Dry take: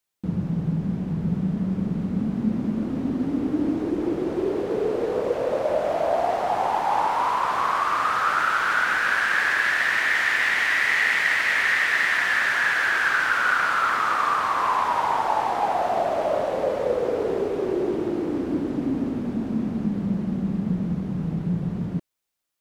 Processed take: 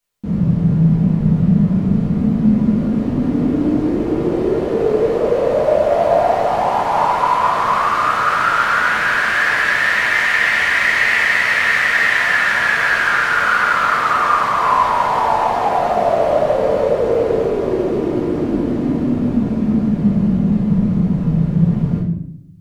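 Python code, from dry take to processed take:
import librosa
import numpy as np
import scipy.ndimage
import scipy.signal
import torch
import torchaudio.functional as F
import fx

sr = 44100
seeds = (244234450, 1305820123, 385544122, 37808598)

y = fx.low_shelf(x, sr, hz=190.0, db=5.0)
y = fx.room_shoebox(y, sr, seeds[0], volume_m3=160.0, walls='mixed', distance_m=1.7)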